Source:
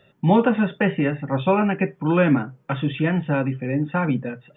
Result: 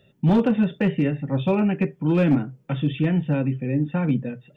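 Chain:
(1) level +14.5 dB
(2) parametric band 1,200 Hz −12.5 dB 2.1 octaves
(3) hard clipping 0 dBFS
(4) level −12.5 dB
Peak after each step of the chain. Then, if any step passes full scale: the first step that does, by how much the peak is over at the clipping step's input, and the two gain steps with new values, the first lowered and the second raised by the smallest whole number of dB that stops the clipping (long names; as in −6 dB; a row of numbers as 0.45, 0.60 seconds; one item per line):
+9.0, +5.5, 0.0, −12.5 dBFS
step 1, 5.5 dB
step 1 +8.5 dB, step 4 −6.5 dB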